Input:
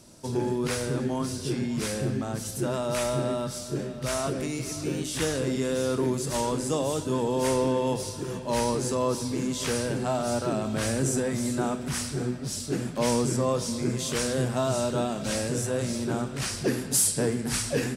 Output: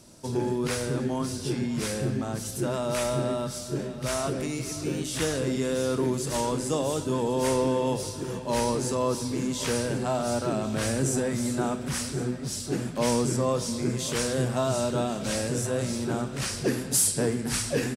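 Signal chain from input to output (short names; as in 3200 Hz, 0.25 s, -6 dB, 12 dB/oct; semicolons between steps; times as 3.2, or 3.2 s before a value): echo 1.081 s -18 dB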